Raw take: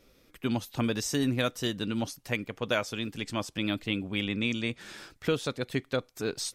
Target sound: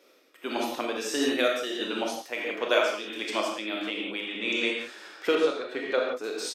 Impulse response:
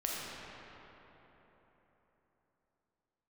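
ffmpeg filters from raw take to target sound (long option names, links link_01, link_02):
-filter_complex "[0:a]highpass=frequency=330:width=0.5412,highpass=frequency=330:width=1.3066,highshelf=frequency=4800:gain=-5,asplit=2[link_01][link_02];[link_02]adelay=28,volume=-14dB[link_03];[link_01][link_03]amix=inputs=2:normalize=0[link_04];[1:a]atrim=start_sample=2205,afade=type=out:start_time=0.23:duration=0.01,atrim=end_sample=10584[link_05];[link_04][link_05]afir=irnorm=-1:irlink=0,tremolo=f=1.5:d=0.54,asettb=1/sr,asplit=3[link_06][link_07][link_08];[link_06]atrim=end=1.324[link_09];[link_07]atrim=start=1.32:end=1.84,asetpts=PTS-STARTPTS,afade=type=in:duration=0.004:curve=qsin,afade=type=out:start_time=0.516:duration=0.004:curve=qsin,bandreject=frequency=1000:width=5.3[link_10];[link_08]atrim=start=1.836[link_11];[link_09][link_10]acrossfade=duration=0.004:curve1=hsin:curve2=qsin[link_12];[link_12][link_11]acrossfade=duration=0.004:curve1=qsin:curve2=hsin,asettb=1/sr,asplit=3[link_13][link_14][link_15];[link_13]atrim=end=3.754[link_16];[link_14]atrim=start=3.75:end=4.42,asetpts=PTS-STARTPTS,afade=type=in:duration=0.004:curve=qsin,afade=type=out:start_time=0.666:duration=0.004:curve=qsin,acompressor=threshold=-34dB:ratio=6[link_17];[link_15]atrim=start=4.416[link_18];[link_16][link_17]acrossfade=duration=0.004:curve1=hsin:curve2=qsin[link_19];[link_19][link_18]acrossfade=duration=0.004:curve1=qsin:curve2=hsin,asettb=1/sr,asplit=3[link_20][link_21][link_22];[link_20]atrim=end=5.354[link_23];[link_21]atrim=start=5.35:end=6.24,asetpts=PTS-STARTPTS,afade=type=in:duration=0.004:curve=qsin,afade=type=out:start_time=0.886:duration=0.004:curve=qsin,aemphasis=mode=reproduction:type=50kf[link_24];[link_22]atrim=start=6.236[link_25];[link_23][link_24]acrossfade=duration=0.004:curve1=hsin:curve2=qsin[link_26];[link_26][link_25]acrossfade=duration=0.004:curve1=qsin:curve2=hsin,volume=5.5dB"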